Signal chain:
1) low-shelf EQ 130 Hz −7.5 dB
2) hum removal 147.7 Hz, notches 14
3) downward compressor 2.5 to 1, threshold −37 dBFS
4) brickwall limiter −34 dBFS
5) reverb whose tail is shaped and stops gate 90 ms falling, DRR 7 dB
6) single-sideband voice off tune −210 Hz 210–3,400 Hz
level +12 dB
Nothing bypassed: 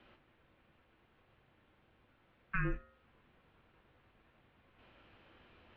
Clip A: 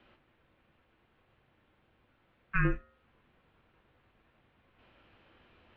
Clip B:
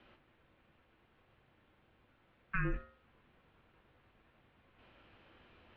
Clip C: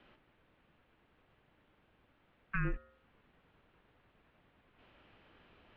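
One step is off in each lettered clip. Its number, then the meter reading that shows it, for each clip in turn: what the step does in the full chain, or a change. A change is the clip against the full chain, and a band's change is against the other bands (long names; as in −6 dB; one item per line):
4, change in momentary loudness spread +1 LU
3, average gain reduction 7.5 dB
5, 125 Hz band +2.0 dB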